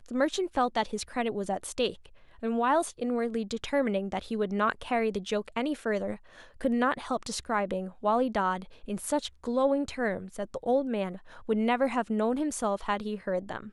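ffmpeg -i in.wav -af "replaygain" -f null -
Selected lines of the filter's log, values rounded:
track_gain = +9.6 dB
track_peak = 0.182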